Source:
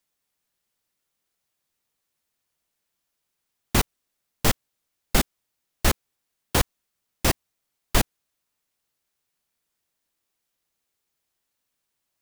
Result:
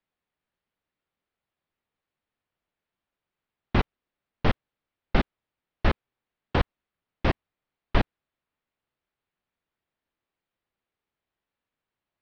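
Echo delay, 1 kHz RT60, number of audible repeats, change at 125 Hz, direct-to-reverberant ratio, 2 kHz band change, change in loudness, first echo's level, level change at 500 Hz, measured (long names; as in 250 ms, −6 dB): no echo audible, no reverb audible, no echo audible, 0.0 dB, no reverb audible, −3.0 dB, −3.5 dB, no echo audible, −1.0 dB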